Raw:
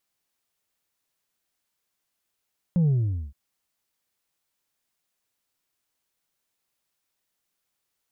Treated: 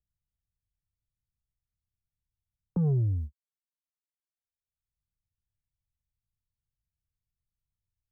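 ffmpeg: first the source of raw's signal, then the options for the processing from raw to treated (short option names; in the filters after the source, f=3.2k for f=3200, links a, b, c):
-f lavfi -i "aevalsrc='0.126*clip((0.57-t)/0.46,0,1)*tanh(1.33*sin(2*PI*180*0.57/log(65/180)*(exp(log(65/180)*t/0.57)-1)))/tanh(1.33)':d=0.57:s=44100"
-filter_complex "[0:a]agate=range=-53dB:threshold=-34dB:ratio=16:detection=peak,acrossover=split=110|240|370[a][b][c][d];[a]acompressor=mode=upward:threshold=-38dB:ratio=2.5[e];[b]asoftclip=type=tanh:threshold=-29dB[f];[e][f][c][d]amix=inputs=4:normalize=0"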